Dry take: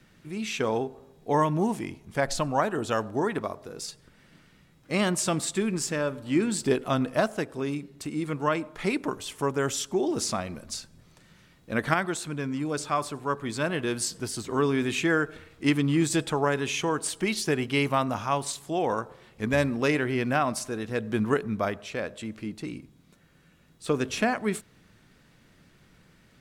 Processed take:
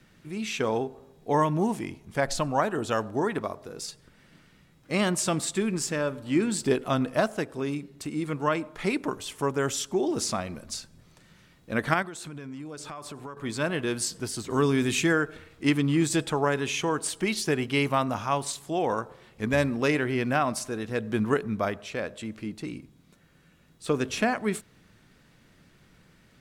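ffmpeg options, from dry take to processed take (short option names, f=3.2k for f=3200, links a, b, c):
-filter_complex "[0:a]asettb=1/sr,asplit=3[a][b][c];[a]atrim=end=12.024[d];[b]atrim=start=12.02:end=13.37,asetpts=PTS-STARTPTS,afade=t=in:d=0.004:c=qsin,afade=t=out:st=1.346:d=0.004:c=qsin,acompressor=threshold=-35dB:ratio=12:attack=3.2:release=140:knee=1:detection=peak[e];[c]atrim=start=13.366[f];[d][e]acrossfade=d=0.004:c1=hsin:c2=qsin[g];[g][f]acrossfade=d=0.004:c1=qsin:c2=hsin,asettb=1/sr,asplit=3[h][i][j];[h]atrim=end=14.504[k];[i]atrim=start=14.5:end=15.13,asetpts=PTS-STARTPTS,afade=t=in:d=0.004:c=qsin,afade=t=out:st=0.626:d=0.004:c=qsin,bass=f=250:g=4,treble=f=4k:g=7[l];[j]atrim=start=15.126[m];[k][l]acrossfade=d=0.004:c1=hsin:c2=qsin[n];[n][m]acrossfade=d=0.004:c1=qsin:c2=hsin"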